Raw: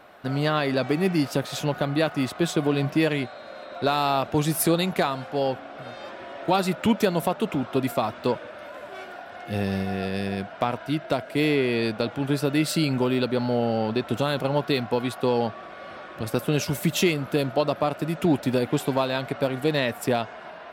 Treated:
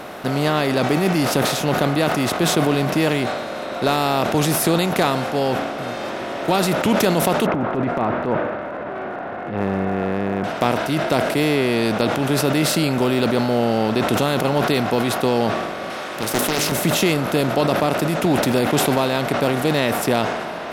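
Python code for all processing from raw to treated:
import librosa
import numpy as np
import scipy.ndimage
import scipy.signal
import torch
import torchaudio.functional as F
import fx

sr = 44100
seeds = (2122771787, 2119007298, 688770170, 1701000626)

y = fx.chain(x, sr, fx.lowpass(hz=1700.0, slope=24),
    fx.transient(attack_db=-10, sustain_db=5), at=(7.46, 10.44))
y = fx.chain(y, sr, fx.tilt_eq(slope=3.0),
    fx.hum_notches(base_hz=50, count=9),
    fx.doppler_dist(depth_ms=0.74), at=(15.9, 16.72))
y = fx.bin_compress(y, sr, power=0.6)
y = fx.sustainer(y, sr, db_per_s=36.0)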